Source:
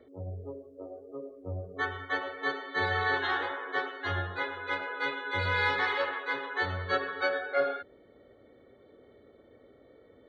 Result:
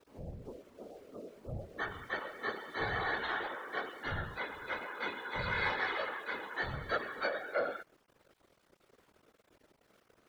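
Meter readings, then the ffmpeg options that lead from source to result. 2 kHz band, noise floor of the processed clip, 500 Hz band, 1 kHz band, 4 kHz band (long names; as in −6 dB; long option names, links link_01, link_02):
−6.0 dB, −72 dBFS, −6.0 dB, −6.0 dB, −6.0 dB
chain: -af "aeval=exprs='val(0)*gte(abs(val(0)),0.00237)':channel_layout=same,afftfilt=real='hypot(re,im)*cos(2*PI*random(0))':imag='hypot(re,im)*sin(2*PI*random(1))':win_size=512:overlap=0.75"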